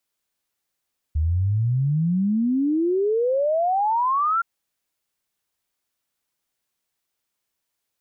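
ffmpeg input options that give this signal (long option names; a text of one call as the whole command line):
ffmpeg -f lavfi -i "aevalsrc='0.126*clip(min(t,3.27-t)/0.01,0,1)*sin(2*PI*74*3.27/log(1400/74)*(exp(log(1400/74)*t/3.27)-1))':duration=3.27:sample_rate=44100" out.wav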